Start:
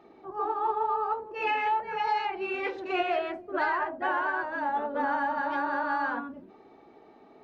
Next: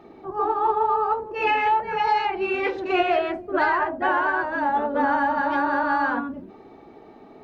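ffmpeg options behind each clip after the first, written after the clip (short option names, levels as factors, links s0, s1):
-af "lowshelf=f=210:g=8.5,volume=2"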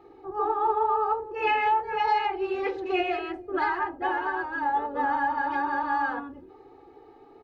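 -af "aecho=1:1:2.4:0.97,volume=0.376"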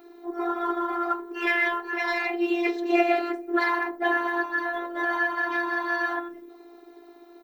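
-af "aeval=exprs='0.178*(cos(1*acos(clip(val(0)/0.178,-1,1)))-cos(1*PI/2))+0.00631*(cos(2*acos(clip(val(0)/0.178,-1,1)))-cos(2*PI/2))':c=same,afftfilt=real='hypot(re,im)*cos(PI*b)':imag='0':win_size=512:overlap=0.75,aemphasis=mode=production:type=bsi,volume=2.51"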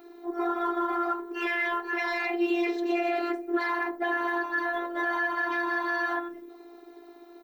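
-af "alimiter=limit=0.126:level=0:latency=1:release=58"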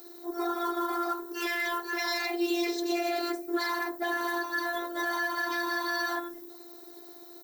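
-af "aexciter=amount=4.6:drive=8.1:freq=3900,volume=0.75"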